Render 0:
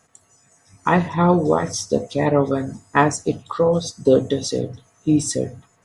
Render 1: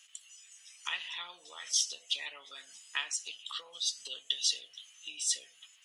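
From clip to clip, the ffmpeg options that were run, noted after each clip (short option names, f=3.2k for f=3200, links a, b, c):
-af "acompressor=threshold=-27dB:ratio=3,highpass=f=3k:t=q:w=8.2"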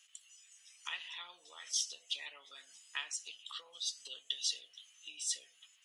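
-af "lowshelf=f=110:g=-11,volume=-5.5dB"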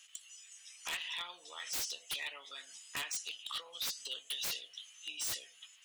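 -af "aeval=exprs='0.0133*(abs(mod(val(0)/0.0133+3,4)-2)-1)':c=same,volume=6dB"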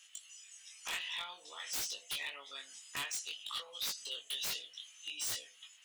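-af "flanger=delay=19.5:depth=3:speed=0.54,volume=3dB"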